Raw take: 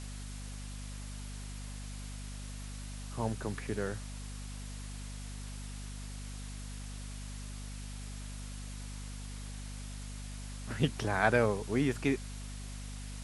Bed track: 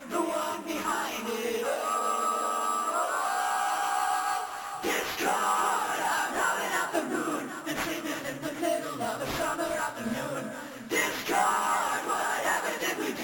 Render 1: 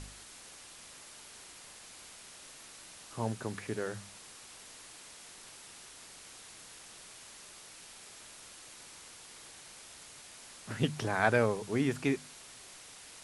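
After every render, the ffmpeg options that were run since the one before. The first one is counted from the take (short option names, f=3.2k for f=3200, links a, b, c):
-af "bandreject=f=50:t=h:w=4,bandreject=f=100:t=h:w=4,bandreject=f=150:t=h:w=4,bandreject=f=200:t=h:w=4,bandreject=f=250:t=h:w=4"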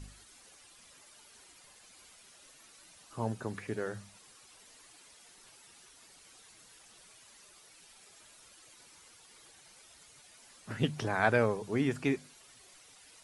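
-af "afftdn=nr=10:nf=-52"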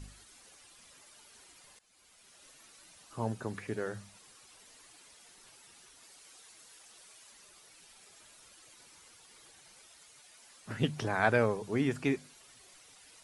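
-filter_complex "[0:a]asettb=1/sr,asplit=3[a][b][c];[a]atrim=end=6.034[d];[b]atrim=start=6.03:end=7.32,asetpts=PTS-STARTPTS,afade=t=in:d=0.004:c=qsin,afade=t=out:st=1.286:d=0.004:c=qsin,bass=f=250:g=-8,treble=f=4k:g=2[e];[c]atrim=start=7.316[f];[d][e]acrossfade=d=0.004:c1=hsin:c2=qsin[g];[g][f]acrossfade=d=0.004:c1=qsin:c2=hsin,asettb=1/sr,asplit=3[h][i][j];[h]atrim=end=9.874[k];[i]atrim=start=9.87:end=10.66,asetpts=PTS-STARTPTS,afade=t=in:d=0.004:c=qsin,afade=t=out:st=0.786:d=0.004:c=qsin,lowshelf=f=290:g=-8[l];[j]atrim=start=10.656[m];[k][l]acrossfade=d=0.004:c1=hsin:c2=qsin[n];[n][m]acrossfade=d=0.004:c1=qsin:c2=hsin,asplit=2[o][p];[o]atrim=end=1.79,asetpts=PTS-STARTPTS,afade=t=out:st=1.786:d=0.004:c=hsin:silence=0.158489[q];[p]atrim=start=1.79,asetpts=PTS-STARTPTS,afade=t=in:d=0.68:silence=0.158489[r];[q][r]concat=n=2:v=0:a=1"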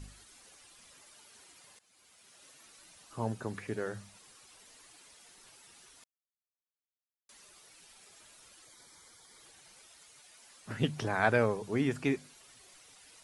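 -filter_complex "[0:a]asettb=1/sr,asplit=3[a][b][c];[a]atrim=end=1.154[d];[b]atrim=start=1.15:end=2.66,asetpts=PTS-STARTPTS,afade=t=in:d=0.004:c=qsin,afade=t=out:st=1.506:d=0.004:c=qsin,highpass=70[e];[c]atrim=start=2.656[f];[d][e]acrossfade=d=0.004:c1=hsin:c2=qsin[g];[g][f]acrossfade=d=0.004:c1=qsin:c2=hsin,asettb=1/sr,asplit=3[h][i][j];[h]atrim=end=8.654[k];[i]atrim=start=8.65:end=9.4,asetpts=PTS-STARTPTS,afade=t=in:d=0.004:c=qsin,afade=t=out:st=0.746:d=0.004:c=qsin,asuperstop=centerf=2700:order=4:qfactor=4.6[l];[j]atrim=start=9.396[m];[k][l]acrossfade=d=0.004:c1=hsin:c2=qsin[n];[n][m]acrossfade=d=0.004:c1=qsin:c2=hsin,asplit=3[o][p][q];[o]atrim=end=6.04,asetpts=PTS-STARTPTS,afade=t=out:st=6.036:d=0.004:c=hsin[r];[p]atrim=start=6.04:end=7.29,asetpts=PTS-STARTPTS,volume=0[s];[q]atrim=start=7.29,asetpts=PTS-STARTPTS,afade=t=in:d=0.004:c=hsin[t];[r][s][t]concat=n=3:v=0:a=1"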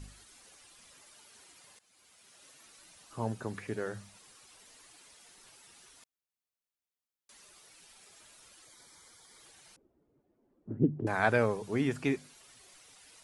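-filter_complex "[0:a]asettb=1/sr,asplit=3[a][b][c];[a]atrim=end=9.764[d];[b]atrim=start=9.76:end=11.07,asetpts=PTS-STARTPTS,afade=t=in:d=0.004:c=qsin,afade=t=out:st=1.306:d=0.004:c=qsin,lowpass=f=330:t=q:w=2.5[e];[c]atrim=start=11.066[f];[d][e]acrossfade=d=0.004:c1=hsin:c2=qsin[g];[g][f]acrossfade=d=0.004:c1=qsin:c2=hsin"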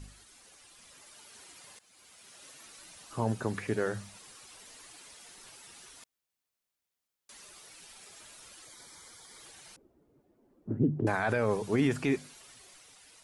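-af "alimiter=limit=-23dB:level=0:latency=1:release=24,dynaudnorm=f=240:g=9:m=5.5dB"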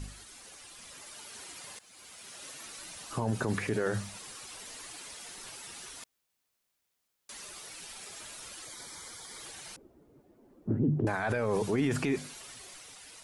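-af "acontrast=63,alimiter=limit=-20.5dB:level=0:latency=1:release=32"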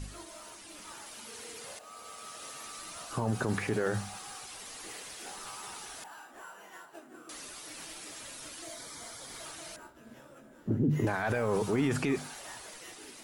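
-filter_complex "[1:a]volume=-21dB[a];[0:a][a]amix=inputs=2:normalize=0"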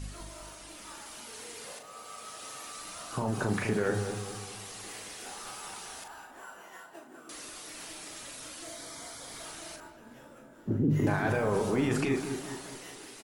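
-filter_complex "[0:a]asplit=2[a][b];[b]adelay=39,volume=-7dB[c];[a][c]amix=inputs=2:normalize=0,asplit=2[d][e];[e]adelay=204,lowpass=f=950:p=1,volume=-6dB,asplit=2[f][g];[g]adelay=204,lowpass=f=950:p=1,volume=0.51,asplit=2[h][i];[i]adelay=204,lowpass=f=950:p=1,volume=0.51,asplit=2[j][k];[k]adelay=204,lowpass=f=950:p=1,volume=0.51,asplit=2[l][m];[m]adelay=204,lowpass=f=950:p=1,volume=0.51,asplit=2[n][o];[o]adelay=204,lowpass=f=950:p=1,volume=0.51[p];[f][h][j][l][n][p]amix=inputs=6:normalize=0[q];[d][q]amix=inputs=2:normalize=0"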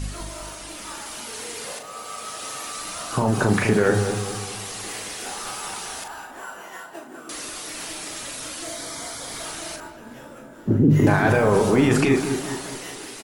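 -af "volume=10.5dB"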